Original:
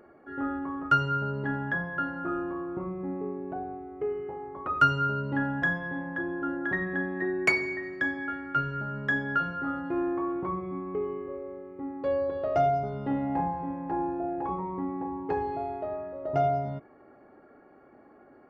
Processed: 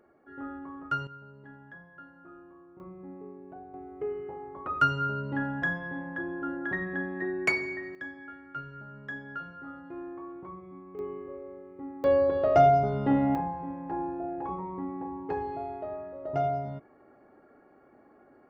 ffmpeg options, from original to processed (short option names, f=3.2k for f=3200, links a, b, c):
-af "asetnsamples=n=441:p=0,asendcmd='1.07 volume volume -19dB;2.8 volume volume -10.5dB;3.74 volume volume -2.5dB;7.95 volume volume -11.5dB;10.99 volume volume -4dB;12.04 volume volume 5dB;13.35 volume volume -3dB',volume=-8dB"